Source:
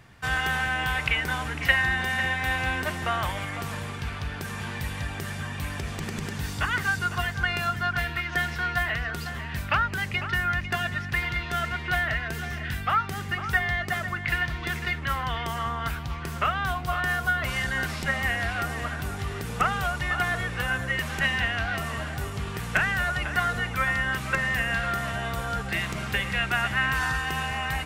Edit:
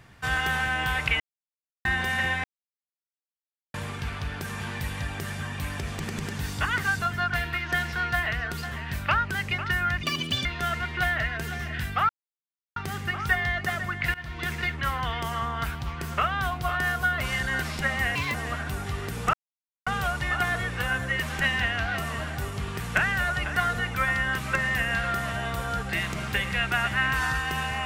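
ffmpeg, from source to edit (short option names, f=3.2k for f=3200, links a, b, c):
-filter_complex "[0:a]asplit=13[a][b][c][d][e][f][g][h][i][j][k][l][m];[a]atrim=end=1.2,asetpts=PTS-STARTPTS,afade=t=out:st=1.196:d=0.004:c=hsin[n];[b]atrim=start=1.2:end=1.85,asetpts=PTS-STARTPTS,volume=0[o];[c]atrim=start=1.85:end=2.44,asetpts=PTS-STARTPTS,afade=t=in:d=0.004:c=hsin,afade=t=out:st=0.586:d=0.004:c=hsin[p];[d]atrim=start=2.44:end=3.74,asetpts=PTS-STARTPTS,volume=0[q];[e]atrim=start=3.74:end=7.022,asetpts=PTS-STARTPTS,afade=t=in:d=0.004:c=hsin[r];[f]atrim=start=7.648:end=10.664[s];[g]atrim=start=10.66:end=11.36,asetpts=PTS-STARTPTS,asetrate=73206,aresample=44100,atrim=end_sample=18596,asetpts=PTS-STARTPTS[t];[h]atrim=start=11.356:end=13,asetpts=PTS-STARTPTS,afade=t=out:st=1.64:d=0.004:c=hsin,apad=pad_dur=0.67[u];[i]atrim=start=13:end=14.38,asetpts=PTS-STARTPTS,afade=t=in:d=0.004:c=hsin,afade=t=out:st=1.376:d=0.004:c=hsin:silence=0.1[v];[j]atrim=start=14.38:end=18.394,asetpts=PTS-STARTPTS,afade=t=in:d=0.43:c=qsin:silence=0.1[w];[k]atrim=start=18.39:end=18.67,asetpts=PTS-STARTPTS,asetrate=63945,aresample=44100[x];[l]atrim=start=18.666:end=19.66,asetpts=PTS-STARTPTS,afade=t=out:st=0.99:d=0.004:c=hsin,apad=pad_dur=0.53[y];[m]atrim=start=19.66,asetpts=PTS-STARTPTS,afade=t=in:d=0.004:c=hsin[z];[n][o][p][q][r]concat=n=5:v=0:a=1[aa];[aa][s]acrossfade=d=0.004:c1=hsin:c2=hsin[ab];[ab][t]acrossfade=d=0.004:c1=hsin:c2=hsin[ac];[u][v][w]concat=n=3:v=0:a=1[ad];[ac][ad]acrossfade=d=0.004:c1=hsin:c2=hsin[ae];[ae][x]acrossfade=d=0.004:c1=hsin:c2=hsin[af];[y][z]concat=n=2:v=0:a=1[ag];[af][ag]acrossfade=d=0.004:c1=hsin:c2=hsin"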